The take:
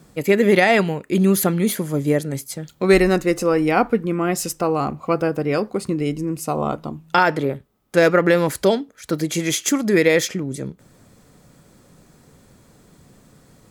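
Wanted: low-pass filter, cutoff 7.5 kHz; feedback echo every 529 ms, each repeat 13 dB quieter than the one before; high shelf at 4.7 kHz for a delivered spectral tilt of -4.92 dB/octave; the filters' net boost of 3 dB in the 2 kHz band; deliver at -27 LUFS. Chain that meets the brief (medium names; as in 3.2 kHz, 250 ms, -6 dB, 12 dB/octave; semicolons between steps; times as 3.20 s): low-pass 7.5 kHz; peaking EQ 2 kHz +5 dB; treble shelf 4.7 kHz -8.5 dB; feedback delay 529 ms, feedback 22%, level -13 dB; trim -8 dB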